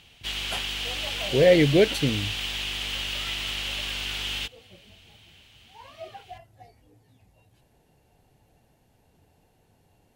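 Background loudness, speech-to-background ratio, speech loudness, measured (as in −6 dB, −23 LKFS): −29.0 LKFS, 6.5 dB, −22.5 LKFS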